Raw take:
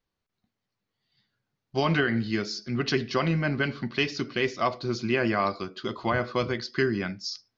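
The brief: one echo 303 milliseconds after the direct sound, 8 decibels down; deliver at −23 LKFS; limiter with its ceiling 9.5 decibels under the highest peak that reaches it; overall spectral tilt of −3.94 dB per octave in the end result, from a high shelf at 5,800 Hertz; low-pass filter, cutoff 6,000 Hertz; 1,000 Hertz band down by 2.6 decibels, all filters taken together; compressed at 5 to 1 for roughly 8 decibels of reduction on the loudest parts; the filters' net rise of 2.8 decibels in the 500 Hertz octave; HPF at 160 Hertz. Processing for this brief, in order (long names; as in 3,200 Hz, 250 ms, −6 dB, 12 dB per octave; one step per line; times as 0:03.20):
high-pass filter 160 Hz
low-pass filter 6,000 Hz
parametric band 500 Hz +5 dB
parametric band 1,000 Hz −5 dB
high-shelf EQ 5,800 Hz +3.5 dB
downward compressor 5 to 1, threshold −28 dBFS
brickwall limiter −25 dBFS
single-tap delay 303 ms −8 dB
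level +12 dB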